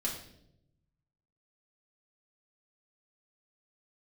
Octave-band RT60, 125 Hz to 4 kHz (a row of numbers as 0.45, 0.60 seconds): 1.6, 1.1, 0.95, 0.60, 0.60, 0.65 seconds